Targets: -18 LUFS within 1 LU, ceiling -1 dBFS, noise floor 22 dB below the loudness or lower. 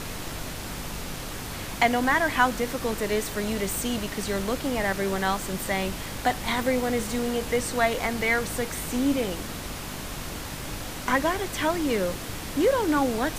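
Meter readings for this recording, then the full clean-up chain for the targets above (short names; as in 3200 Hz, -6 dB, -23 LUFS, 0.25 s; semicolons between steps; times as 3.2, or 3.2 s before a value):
hum 50 Hz; harmonics up to 300 Hz; hum level -41 dBFS; noise floor -36 dBFS; noise floor target -49 dBFS; loudness -27.0 LUFS; peak -6.5 dBFS; loudness target -18.0 LUFS
-> de-hum 50 Hz, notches 6; noise print and reduce 13 dB; gain +9 dB; limiter -1 dBFS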